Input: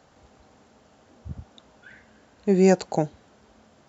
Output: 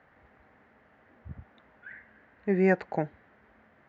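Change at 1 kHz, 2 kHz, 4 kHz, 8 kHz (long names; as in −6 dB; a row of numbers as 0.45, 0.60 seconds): −5.0 dB, +3.0 dB, below −15 dB, can't be measured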